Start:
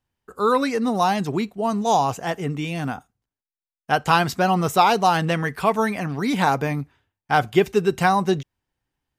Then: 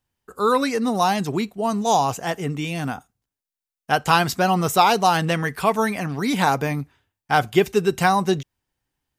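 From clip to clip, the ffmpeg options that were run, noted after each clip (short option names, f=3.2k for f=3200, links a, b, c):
-af "highshelf=f=4.5k:g=6"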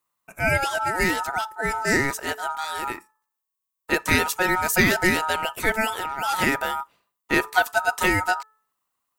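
-af "aexciter=amount=2.7:drive=3.7:freq=7.4k,aeval=exprs='val(0)*sin(2*PI*1100*n/s)':c=same,bandreject=f=434.5:t=h:w=4,bandreject=f=869:t=h:w=4,bandreject=f=1.3035k:t=h:w=4,bandreject=f=1.738k:t=h:w=4"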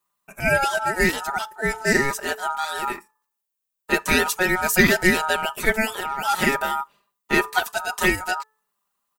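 -af "bandreject=f=2.1k:w=15,aecho=1:1:5:0.71"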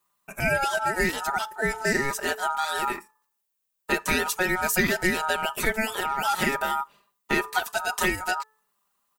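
-af "acompressor=threshold=-27dB:ratio=2.5,volume=3dB"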